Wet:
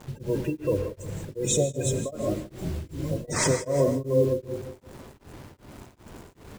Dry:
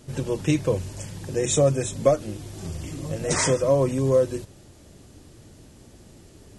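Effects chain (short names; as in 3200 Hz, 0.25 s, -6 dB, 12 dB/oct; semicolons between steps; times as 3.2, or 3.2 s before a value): spectral gate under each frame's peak -20 dB strong; 0.43–1.02 bell 160 Hz -8 dB 1.2 oct; limiter -17 dBFS, peak gain reduction 10 dB; bit-crush 8-bit; 2.24–2.83 doubler 16 ms -3 dB; buzz 100 Hz, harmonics 10, -64 dBFS 0 dB/oct; feedback echo 0.171 s, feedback 42%, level -12 dB; non-linear reverb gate 0.22 s rising, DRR 5.5 dB; beating tremolo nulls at 2.6 Hz; gain +2.5 dB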